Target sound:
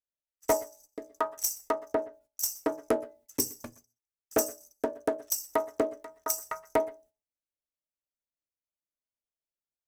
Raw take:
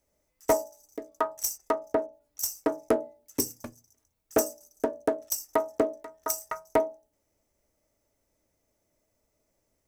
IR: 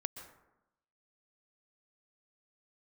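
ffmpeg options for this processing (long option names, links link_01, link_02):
-filter_complex "[0:a]agate=range=-29dB:threshold=-56dB:ratio=16:detection=peak,asplit=2[link_01][link_02];[link_02]tiltshelf=frequency=970:gain=-4.5[link_03];[1:a]atrim=start_sample=2205,afade=type=out:start_time=0.18:duration=0.01,atrim=end_sample=8379[link_04];[link_03][link_04]afir=irnorm=-1:irlink=0,volume=-3.5dB[link_05];[link_01][link_05]amix=inputs=2:normalize=0,volume=-5.5dB"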